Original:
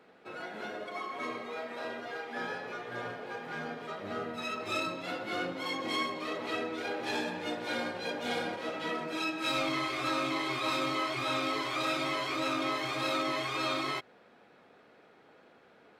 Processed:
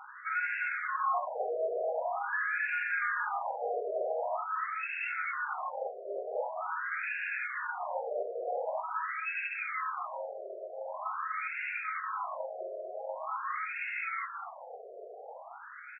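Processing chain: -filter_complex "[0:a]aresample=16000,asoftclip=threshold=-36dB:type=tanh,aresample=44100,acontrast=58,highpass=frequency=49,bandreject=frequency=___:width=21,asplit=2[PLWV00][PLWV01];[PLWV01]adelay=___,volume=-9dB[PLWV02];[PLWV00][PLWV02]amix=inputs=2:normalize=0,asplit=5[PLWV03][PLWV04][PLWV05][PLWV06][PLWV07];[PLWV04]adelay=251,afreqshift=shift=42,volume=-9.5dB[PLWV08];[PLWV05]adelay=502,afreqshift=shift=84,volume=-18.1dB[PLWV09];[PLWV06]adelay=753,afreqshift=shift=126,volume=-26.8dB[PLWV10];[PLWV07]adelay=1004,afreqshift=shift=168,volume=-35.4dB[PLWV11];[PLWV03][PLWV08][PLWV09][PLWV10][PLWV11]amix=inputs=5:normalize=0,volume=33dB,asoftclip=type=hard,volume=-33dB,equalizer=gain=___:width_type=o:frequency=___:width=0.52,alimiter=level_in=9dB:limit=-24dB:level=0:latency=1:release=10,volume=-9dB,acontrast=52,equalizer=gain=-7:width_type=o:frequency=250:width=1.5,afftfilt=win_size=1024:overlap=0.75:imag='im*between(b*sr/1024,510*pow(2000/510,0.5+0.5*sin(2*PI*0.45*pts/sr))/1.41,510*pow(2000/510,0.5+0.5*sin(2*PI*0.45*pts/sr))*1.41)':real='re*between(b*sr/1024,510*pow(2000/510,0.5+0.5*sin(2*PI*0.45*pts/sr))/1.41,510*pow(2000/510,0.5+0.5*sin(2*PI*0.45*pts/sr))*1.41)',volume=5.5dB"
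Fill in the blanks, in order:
6200, 39, 14.5, 6200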